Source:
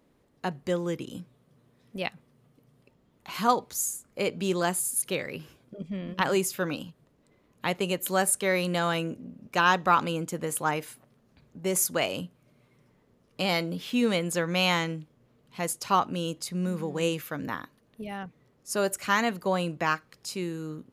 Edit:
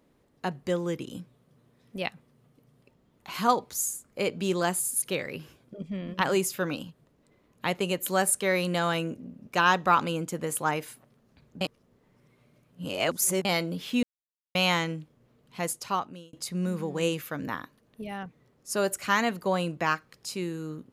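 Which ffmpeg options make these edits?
-filter_complex "[0:a]asplit=6[s0][s1][s2][s3][s4][s5];[s0]atrim=end=11.612[s6];[s1]atrim=start=11.608:end=13.452,asetpts=PTS-STARTPTS,areverse[s7];[s2]atrim=start=13.448:end=14.03,asetpts=PTS-STARTPTS,afade=t=out:st=0.578:d=0.004:c=hsin[s8];[s3]atrim=start=14.03:end=14.55,asetpts=PTS-STARTPTS,volume=0[s9];[s4]atrim=start=14.55:end=16.33,asetpts=PTS-STARTPTS,afade=t=in:d=0.004:c=hsin,afade=t=out:st=1.09:d=0.69[s10];[s5]atrim=start=16.33,asetpts=PTS-STARTPTS,afade=t=in:d=0.004:c=hsin[s11];[s6][s7]acrossfade=d=0.004:c1=hsin:c2=hsin[s12];[s8][s9][s10][s11]concat=n=4:v=0:a=1[s13];[s12][s13]acrossfade=d=0.004:c1=hsin:c2=hsin"

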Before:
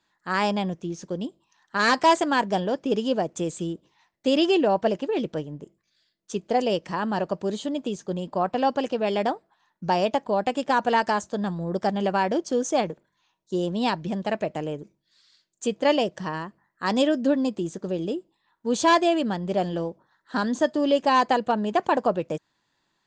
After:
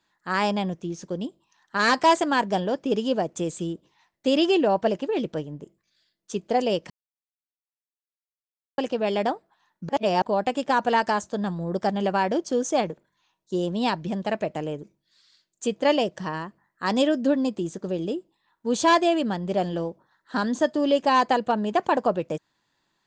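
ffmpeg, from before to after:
-filter_complex "[0:a]asplit=5[s0][s1][s2][s3][s4];[s0]atrim=end=6.9,asetpts=PTS-STARTPTS,afade=t=out:st=6.896:d=0.004:c=hsin[s5];[s1]atrim=start=6.9:end=8.78,asetpts=PTS-STARTPTS,volume=0[s6];[s2]atrim=start=8.78:end=9.892,asetpts=PTS-STARTPTS,afade=t=in:d=0.004:c=hsin[s7];[s3]atrim=start=9.888:end=10.222,asetpts=PTS-STARTPTS,areverse[s8];[s4]atrim=start=10.218[s9];[s5][s6][s7]concat=n=3:v=0:a=1[s10];[s10][s8]acrossfade=d=0.004:c1=hsin:c2=hsin[s11];[s11][s9]acrossfade=d=0.004:c1=hsin:c2=hsin"

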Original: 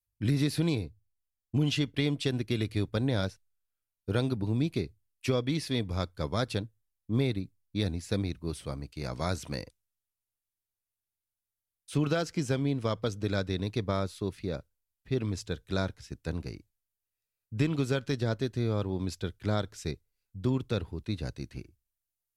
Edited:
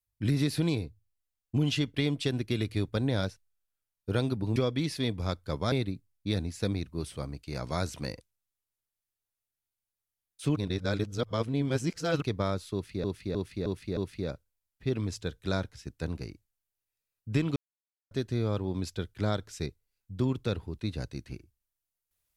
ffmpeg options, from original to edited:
-filter_complex "[0:a]asplit=11[s0][s1][s2][s3][s4][s5][s6][s7][s8][s9][s10];[s0]atrim=end=4.562[s11];[s1]atrim=start=5.268:end=6.432[s12];[s2]atrim=start=7.208:end=12.052[s13];[s3]atrim=start=12.048:end=13.712,asetpts=PTS-STARTPTS,areverse[s14];[s4]atrim=start=13.708:end=14.532[s15];[s5]atrim=start=14.218:end=14.532[s16];[s6]atrim=start=14.218:end=14.532[s17];[s7]atrim=start=14.218:end=14.532[s18];[s8]atrim=start=14.218:end=17.81,asetpts=PTS-STARTPTS,afade=t=out:st=3.588:d=0.004:c=hsin[s19];[s9]atrim=start=17.81:end=18.36,asetpts=PTS-STARTPTS,volume=0[s20];[s10]atrim=start=18.36,asetpts=PTS-STARTPTS,afade=t=in:d=0.004:c=hsin[s21];[s11][s12]acrossfade=d=0.004:c1=hsin:c2=hsin[s22];[s22][s13]acrossfade=d=0.004:c1=hsin:c2=hsin[s23];[s23][s14]acrossfade=d=0.004:c1=hsin:c2=hsin[s24];[s24][s15]acrossfade=d=0.004:c1=hsin:c2=hsin[s25];[s25][s16]acrossfade=d=0.004:c1=hsin:c2=hsin[s26];[s26][s17]acrossfade=d=0.004:c1=hsin:c2=hsin[s27];[s27][s18]acrossfade=d=0.004:c1=hsin:c2=hsin[s28];[s19][s20][s21]concat=n=3:v=0:a=1[s29];[s28][s29]acrossfade=d=0.004:c1=hsin:c2=hsin"

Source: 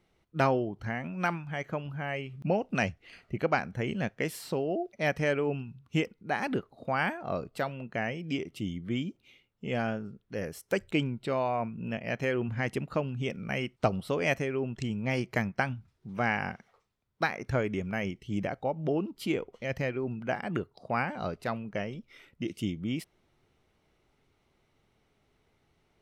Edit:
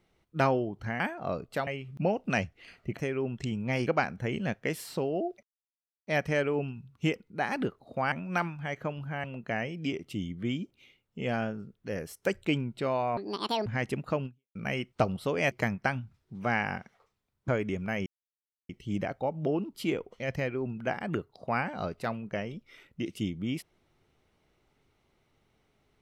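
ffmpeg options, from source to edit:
-filter_complex "[0:a]asplit=14[s0][s1][s2][s3][s4][s5][s6][s7][s8][s9][s10][s11][s12][s13];[s0]atrim=end=1.002[s14];[s1]atrim=start=7.028:end=7.702[s15];[s2]atrim=start=2.118:end=3.422[s16];[s3]atrim=start=14.348:end=15.252[s17];[s4]atrim=start=3.418:end=4.98,asetpts=PTS-STARTPTS,afade=t=out:st=1.558:d=0.004:c=hsin,apad=pad_dur=0.64[s18];[s5]atrim=start=4.98:end=7.032,asetpts=PTS-STARTPTS,afade=t=in:d=0.004:c=hsin[s19];[s6]atrim=start=0.998:end=2.122[s20];[s7]atrim=start=7.698:end=11.634[s21];[s8]atrim=start=11.63:end=12.5,asetpts=PTS-STARTPTS,asetrate=78057,aresample=44100,atrim=end_sample=21676,asetpts=PTS-STARTPTS[s22];[s9]atrim=start=12.496:end=13.39,asetpts=PTS-STARTPTS,afade=t=out:st=0.604:d=0.29:c=exp[s23];[s10]atrim=start=13.39:end=14.352,asetpts=PTS-STARTPTS,afade=t=in:d=0.004:c=hsin[s24];[s11]atrim=start=15.248:end=17.222[s25];[s12]atrim=start=17.528:end=18.11,asetpts=PTS-STARTPTS,afade=t=out:st=0.578:d=0.004:c=hsin,apad=pad_dur=0.63[s26];[s13]atrim=start=18.11,asetpts=PTS-STARTPTS,afade=t=in:d=0.004:c=hsin[s27];[s14][s15]acrossfade=d=0.004:c1=hsin:c2=hsin[s28];[s28][s16]acrossfade=d=0.004:c1=hsin:c2=hsin[s29];[s29][s17]acrossfade=d=0.004:c1=hsin:c2=hsin[s30];[s18][s19]concat=n=2:v=0:a=1[s31];[s30][s31]acrossfade=d=0.004:c1=hsin:c2=hsin[s32];[s32][s20]acrossfade=d=0.004:c1=hsin:c2=hsin[s33];[s33][s21]acrossfade=d=0.004:c1=hsin:c2=hsin[s34];[s34][s22]acrossfade=d=0.004:c1=hsin:c2=hsin[s35];[s23][s24]concat=n=2:v=0:a=1[s36];[s35][s36]acrossfade=d=0.004:c1=hsin:c2=hsin[s37];[s37][s25]acrossfade=d=0.004:c1=hsin:c2=hsin[s38];[s26][s27]concat=n=2:v=0:a=1[s39];[s38][s39]acrossfade=d=0.004:c1=hsin:c2=hsin"

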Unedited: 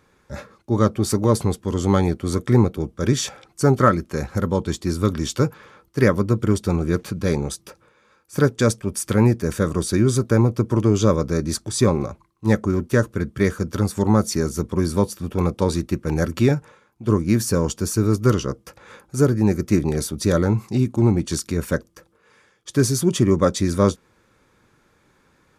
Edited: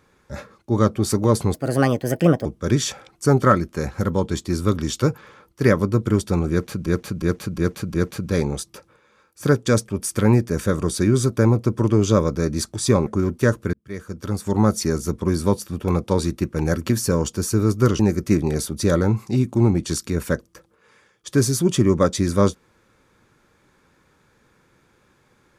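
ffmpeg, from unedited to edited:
-filter_complex "[0:a]asplit=11[s0][s1][s2][s3][s4][s5][s6][s7][s8][s9][s10];[s0]atrim=end=1.544[s11];[s1]atrim=start=1.54:end=2.82,asetpts=PTS-STARTPTS,asetrate=61740,aresample=44100[s12];[s2]atrim=start=2.816:end=7.232[s13];[s3]atrim=start=6.868:end=7.232[s14];[s4]atrim=start=6.868:end=7.232[s15];[s5]atrim=start=6.868:end=7.232[s16];[s6]atrim=start=6.868:end=11.992[s17];[s7]atrim=start=12.568:end=13.24,asetpts=PTS-STARTPTS,afade=t=out:st=0.668:d=0.004:c=hsin[s18];[s8]atrim=start=13.24:end=16.402,asetpts=PTS-STARTPTS,afade=t=in:d=0.95[s19];[s9]atrim=start=17.328:end=18.432[s20];[s10]atrim=start=19.408[s21];[s11][s12]acrossfade=d=0.004:c1=hsin:c2=hsin[s22];[s22][s13]acrossfade=d=0.004:c1=hsin:c2=hsin[s23];[s23][s14]acrossfade=d=0.004:c1=hsin:c2=hsin[s24];[s24][s15]acrossfade=d=0.004:c1=hsin:c2=hsin[s25];[s25][s16]acrossfade=d=0.004:c1=hsin:c2=hsin[s26];[s26][s17]acrossfade=d=0.004:c1=hsin:c2=hsin[s27];[s18][s19]concat=n=2:v=0:a=1[s28];[s27][s28]acrossfade=d=0.004:c1=hsin:c2=hsin[s29];[s29][s20]acrossfade=d=0.004:c1=hsin:c2=hsin[s30];[s30][s21]acrossfade=d=0.004:c1=hsin:c2=hsin"

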